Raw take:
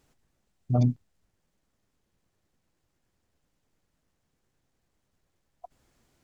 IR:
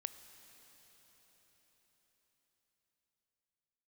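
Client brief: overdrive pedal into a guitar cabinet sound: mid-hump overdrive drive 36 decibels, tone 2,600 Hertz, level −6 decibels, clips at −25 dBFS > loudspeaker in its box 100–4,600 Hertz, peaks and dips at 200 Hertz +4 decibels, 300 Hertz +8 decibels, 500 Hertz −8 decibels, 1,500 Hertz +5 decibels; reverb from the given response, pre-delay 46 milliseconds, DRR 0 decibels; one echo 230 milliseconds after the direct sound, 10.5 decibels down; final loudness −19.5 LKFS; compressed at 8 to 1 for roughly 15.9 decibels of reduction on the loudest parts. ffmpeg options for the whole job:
-filter_complex "[0:a]acompressor=threshold=-35dB:ratio=8,aecho=1:1:230:0.299,asplit=2[link_01][link_02];[1:a]atrim=start_sample=2205,adelay=46[link_03];[link_02][link_03]afir=irnorm=-1:irlink=0,volume=2.5dB[link_04];[link_01][link_04]amix=inputs=2:normalize=0,asplit=2[link_05][link_06];[link_06]highpass=frequency=720:poles=1,volume=36dB,asoftclip=type=tanh:threshold=-25dB[link_07];[link_05][link_07]amix=inputs=2:normalize=0,lowpass=frequency=2600:poles=1,volume=-6dB,highpass=100,equalizer=frequency=200:width_type=q:width=4:gain=4,equalizer=frequency=300:width_type=q:width=4:gain=8,equalizer=frequency=500:width_type=q:width=4:gain=-8,equalizer=frequency=1500:width_type=q:width=4:gain=5,lowpass=frequency=4600:width=0.5412,lowpass=frequency=4600:width=1.3066,volume=19dB"

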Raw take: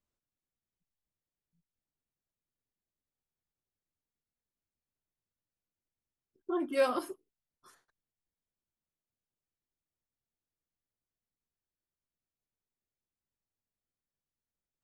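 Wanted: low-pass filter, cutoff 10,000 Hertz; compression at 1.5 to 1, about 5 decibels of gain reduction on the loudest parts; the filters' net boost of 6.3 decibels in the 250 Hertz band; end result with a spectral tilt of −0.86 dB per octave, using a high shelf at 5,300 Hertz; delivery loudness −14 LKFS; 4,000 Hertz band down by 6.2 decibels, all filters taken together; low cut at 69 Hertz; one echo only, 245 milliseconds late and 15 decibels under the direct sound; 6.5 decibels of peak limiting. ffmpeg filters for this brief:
ffmpeg -i in.wav -af "highpass=69,lowpass=10000,equalizer=frequency=250:width_type=o:gain=9,equalizer=frequency=4000:width_type=o:gain=-5.5,highshelf=frequency=5300:gain=-6,acompressor=threshold=-34dB:ratio=1.5,alimiter=level_in=3dB:limit=-24dB:level=0:latency=1,volume=-3dB,aecho=1:1:245:0.178,volume=23dB" out.wav

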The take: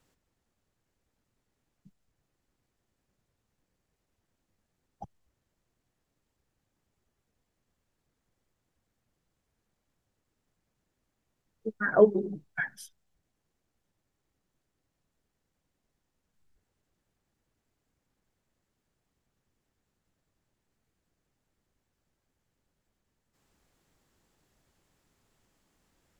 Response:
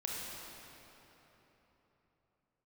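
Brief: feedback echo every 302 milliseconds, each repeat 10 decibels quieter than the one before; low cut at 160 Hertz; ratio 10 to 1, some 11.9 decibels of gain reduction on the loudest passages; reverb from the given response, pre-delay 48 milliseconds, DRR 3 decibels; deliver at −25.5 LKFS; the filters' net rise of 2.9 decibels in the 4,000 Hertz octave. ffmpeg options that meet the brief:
-filter_complex "[0:a]highpass=160,equalizer=frequency=4000:width_type=o:gain=4,acompressor=threshold=-24dB:ratio=10,aecho=1:1:302|604|906|1208:0.316|0.101|0.0324|0.0104,asplit=2[link_01][link_02];[1:a]atrim=start_sample=2205,adelay=48[link_03];[link_02][link_03]afir=irnorm=-1:irlink=0,volume=-5.5dB[link_04];[link_01][link_04]amix=inputs=2:normalize=0,volume=8.5dB"

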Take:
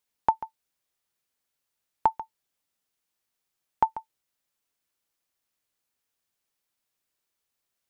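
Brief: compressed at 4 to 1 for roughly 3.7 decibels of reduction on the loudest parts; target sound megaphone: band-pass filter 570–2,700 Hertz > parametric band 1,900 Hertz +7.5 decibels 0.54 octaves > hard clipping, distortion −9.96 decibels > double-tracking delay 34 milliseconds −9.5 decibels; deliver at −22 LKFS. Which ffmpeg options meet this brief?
ffmpeg -i in.wav -filter_complex "[0:a]acompressor=threshold=-22dB:ratio=4,highpass=570,lowpass=2700,equalizer=frequency=1900:width_type=o:width=0.54:gain=7.5,asoftclip=type=hard:threshold=-19.5dB,asplit=2[link_01][link_02];[link_02]adelay=34,volume=-9.5dB[link_03];[link_01][link_03]amix=inputs=2:normalize=0,volume=14.5dB" out.wav

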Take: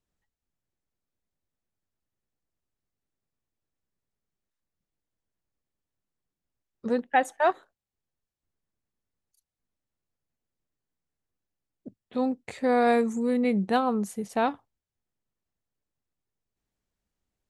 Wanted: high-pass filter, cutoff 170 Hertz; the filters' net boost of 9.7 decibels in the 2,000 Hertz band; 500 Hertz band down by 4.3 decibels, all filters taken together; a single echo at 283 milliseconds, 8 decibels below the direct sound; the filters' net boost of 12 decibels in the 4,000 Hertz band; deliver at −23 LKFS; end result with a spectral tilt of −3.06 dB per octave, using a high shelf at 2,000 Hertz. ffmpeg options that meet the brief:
ffmpeg -i in.wav -af "highpass=170,equalizer=frequency=500:width_type=o:gain=-6,highshelf=frequency=2000:gain=7,equalizer=frequency=2000:width_type=o:gain=7.5,equalizer=frequency=4000:width_type=o:gain=5.5,aecho=1:1:283:0.398,volume=2dB" out.wav

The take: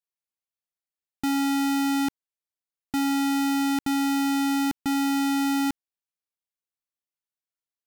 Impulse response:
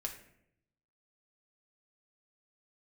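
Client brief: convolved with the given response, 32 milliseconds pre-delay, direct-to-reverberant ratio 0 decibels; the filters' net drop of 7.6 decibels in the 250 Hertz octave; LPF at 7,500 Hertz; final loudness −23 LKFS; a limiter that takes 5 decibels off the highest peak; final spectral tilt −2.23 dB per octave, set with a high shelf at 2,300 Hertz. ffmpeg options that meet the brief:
-filter_complex "[0:a]lowpass=7500,equalizer=frequency=250:width_type=o:gain=-8.5,highshelf=frequency=2300:gain=9,alimiter=limit=-19.5dB:level=0:latency=1,asplit=2[link_01][link_02];[1:a]atrim=start_sample=2205,adelay=32[link_03];[link_02][link_03]afir=irnorm=-1:irlink=0,volume=0.5dB[link_04];[link_01][link_04]amix=inputs=2:normalize=0,volume=6dB"

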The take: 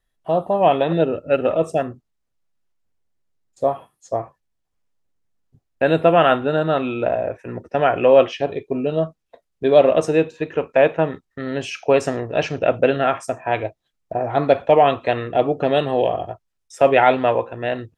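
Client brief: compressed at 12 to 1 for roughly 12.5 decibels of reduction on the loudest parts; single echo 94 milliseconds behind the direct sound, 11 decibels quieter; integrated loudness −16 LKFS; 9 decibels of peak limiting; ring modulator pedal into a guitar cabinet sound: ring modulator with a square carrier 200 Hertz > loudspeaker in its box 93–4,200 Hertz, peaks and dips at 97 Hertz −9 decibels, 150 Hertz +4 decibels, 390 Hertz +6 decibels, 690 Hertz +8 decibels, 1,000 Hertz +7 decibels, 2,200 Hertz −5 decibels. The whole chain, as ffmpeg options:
ffmpeg -i in.wav -af "acompressor=threshold=-20dB:ratio=12,alimiter=limit=-17dB:level=0:latency=1,aecho=1:1:94:0.282,aeval=exprs='val(0)*sgn(sin(2*PI*200*n/s))':channel_layout=same,highpass=93,equalizer=frequency=97:width_type=q:width=4:gain=-9,equalizer=frequency=150:width_type=q:width=4:gain=4,equalizer=frequency=390:width_type=q:width=4:gain=6,equalizer=frequency=690:width_type=q:width=4:gain=8,equalizer=frequency=1000:width_type=q:width=4:gain=7,equalizer=frequency=2200:width_type=q:width=4:gain=-5,lowpass=frequency=4200:width=0.5412,lowpass=frequency=4200:width=1.3066,volume=8.5dB" out.wav

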